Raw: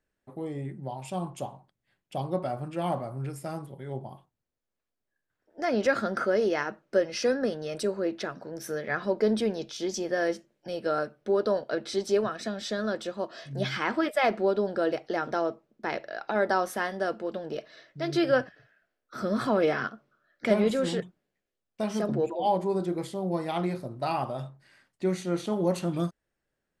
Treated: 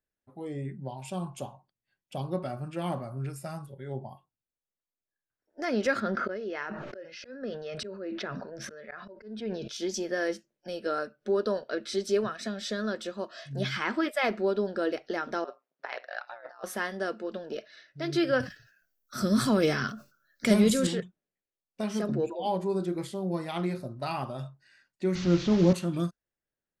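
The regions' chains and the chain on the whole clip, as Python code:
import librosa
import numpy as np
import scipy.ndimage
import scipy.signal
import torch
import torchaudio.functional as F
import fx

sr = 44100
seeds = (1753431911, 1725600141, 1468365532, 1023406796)

y = fx.chain(x, sr, fx.lowpass(hz=3800.0, slope=12),
    fx.auto_swell(attack_ms=535.0),
    fx.sustainer(db_per_s=28.0), at=(6.0, 9.68))
y = fx.chain(y, sr, fx.bandpass_edges(low_hz=650.0, high_hz=4700.0),
    fx.over_compress(threshold_db=-35.0, ratio=-0.5),
    fx.ring_mod(carrier_hz=62.0), at=(15.44, 16.64))
y = fx.chain(y, sr, fx.bass_treble(bass_db=8, treble_db=15),
    fx.sustainer(db_per_s=150.0), at=(18.4, 20.87))
y = fx.chain(y, sr, fx.delta_mod(bps=32000, step_db=-31.5),
    fx.low_shelf(hz=310.0, db=11.5), at=(25.15, 25.73))
y = fx.noise_reduce_blind(y, sr, reduce_db=11)
y = fx.dynamic_eq(y, sr, hz=730.0, q=1.5, threshold_db=-40.0, ratio=4.0, max_db=-6)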